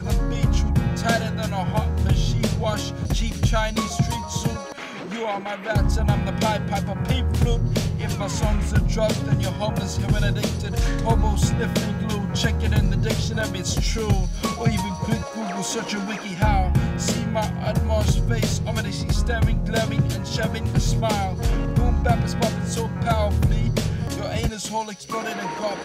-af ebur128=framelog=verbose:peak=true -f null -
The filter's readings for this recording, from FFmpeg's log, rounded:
Integrated loudness:
  I:         -23.3 LUFS
  Threshold: -33.3 LUFS
Loudness range:
  LRA:         1.9 LU
  Threshold: -43.3 LUFS
  LRA low:   -24.5 LUFS
  LRA high:  -22.6 LUFS
True peak:
  Peak:       -9.4 dBFS